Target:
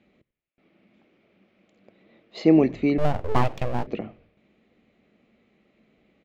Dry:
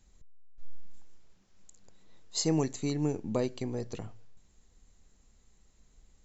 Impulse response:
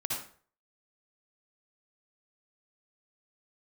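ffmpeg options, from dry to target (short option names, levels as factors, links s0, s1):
-filter_complex "[0:a]highpass=210,equalizer=f=220:t=q:w=4:g=7,equalizer=f=330:t=q:w=4:g=5,equalizer=f=600:t=q:w=4:g=6,equalizer=f=950:t=q:w=4:g=-10,equalizer=f=1600:t=q:w=4:g=-6,equalizer=f=2300:t=q:w=4:g=6,lowpass=f=2900:w=0.5412,lowpass=f=2900:w=1.3066,asplit=4[s0][s1][s2][s3];[s1]adelay=88,afreqshift=-94,volume=0.0794[s4];[s2]adelay=176,afreqshift=-188,volume=0.0359[s5];[s3]adelay=264,afreqshift=-282,volume=0.016[s6];[s0][s4][s5][s6]amix=inputs=4:normalize=0,asettb=1/sr,asplit=3[s7][s8][s9];[s7]atrim=end=2.984[s10];[s8]atrim=start=2.98:end=3.87,asetpts=PTS-STARTPTS,afade=t=in:d=0.004:c=qsin,afade=t=out:st=0.886:d=0.004:c=qsin,aeval=exprs='abs(val(0))':c=same[s11];[s9]atrim=start=3.866[s12];[s10][s11]acrossfade=d=0.004:c1=hsin:c2=qsin[s13];[s13][s12]acrossfade=d=0.004:c1=qsin:c2=hsin,volume=2.82"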